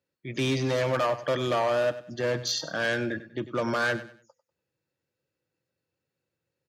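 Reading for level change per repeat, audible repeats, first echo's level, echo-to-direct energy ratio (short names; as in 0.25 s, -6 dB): -10.5 dB, 2, -14.5 dB, -14.0 dB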